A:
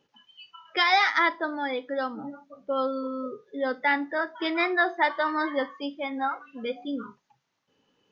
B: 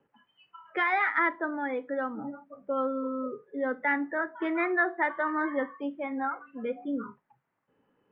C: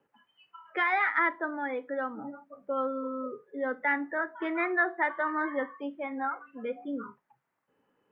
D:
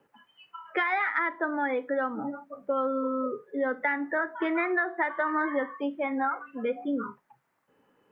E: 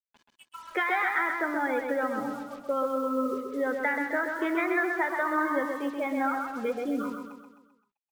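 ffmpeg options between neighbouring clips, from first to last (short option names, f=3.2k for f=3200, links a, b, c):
-filter_complex "[0:a]lowpass=f=2k:w=0.5412,lowpass=f=2k:w=1.3066,acrossover=split=150|570|1100[a][b][c][d];[c]acompressor=threshold=-41dB:ratio=6[e];[a][b][e][d]amix=inputs=4:normalize=0"
-af "lowshelf=f=280:g=-6.5"
-af "acompressor=threshold=-30dB:ratio=10,volume=6.5dB"
-af "acrusher=bits=7:mix=0:aa=0.5,aecho=1:1:130|260|390|520|650|780:0.562|0.276|0.135|0.0662|0.0324|0.0159,volume=-1dB"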